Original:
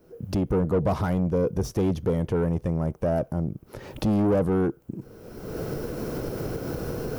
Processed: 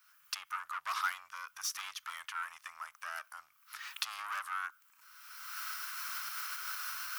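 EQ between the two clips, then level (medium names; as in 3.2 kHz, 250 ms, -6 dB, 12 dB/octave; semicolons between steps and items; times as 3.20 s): elliptic high-pass 1.2 kHz, stop band 60 dB; +4.5 dB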